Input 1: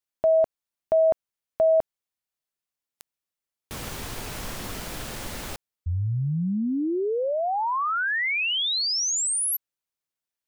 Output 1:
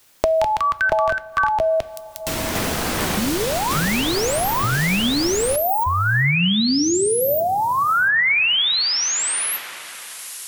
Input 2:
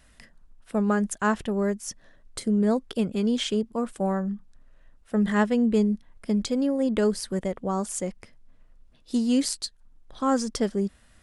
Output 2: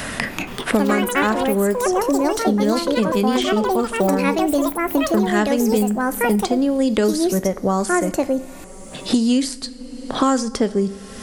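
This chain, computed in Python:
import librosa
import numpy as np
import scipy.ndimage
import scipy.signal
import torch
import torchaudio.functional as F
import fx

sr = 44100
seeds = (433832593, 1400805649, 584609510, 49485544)

y = fx.rev_double_slope(x, sr, seeds[0], early_s=0.44, late_s=3.5, knee_db=-18, drr_db=12.5)
y = fx.echo_pitch(y, sr, ms=236, semitones=5, count=3, db_per_echo=-3.0)
y = fx.band_squash(y, sr, depth_pct=100)
y = F.gain(torch.from_numpy(y), 5.0).numpy()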